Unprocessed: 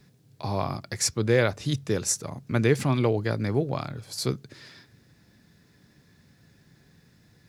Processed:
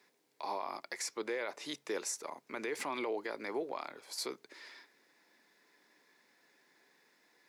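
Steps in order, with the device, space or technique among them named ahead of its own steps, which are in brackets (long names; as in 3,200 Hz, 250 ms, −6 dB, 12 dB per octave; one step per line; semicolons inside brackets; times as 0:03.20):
laptop speaker (high-pass filter 330 Hz 24 dB per octave; parametric band 950 Hz +8 dB 0.47 octaves; parametric band 2,100 Hz +7 dB 0.44 octaves; brickwall limiter −21 dBFS, peak gain reduction 12.5 dB)
level −6.5 dB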